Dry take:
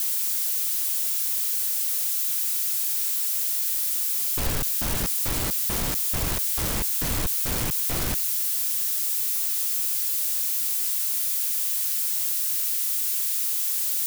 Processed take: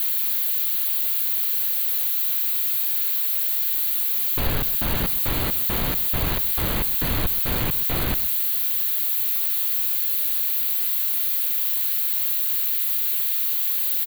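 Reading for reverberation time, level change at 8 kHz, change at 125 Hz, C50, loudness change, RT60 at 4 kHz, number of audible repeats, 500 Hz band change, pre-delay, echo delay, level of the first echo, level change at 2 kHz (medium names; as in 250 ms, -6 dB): no reverb, -6.5 dB, +3.5 dB, no reverb, +2.5 dB, no reverb, 1, +3.5 dB, no reverb, 128 ms, -15.5 dB, +3.5 dB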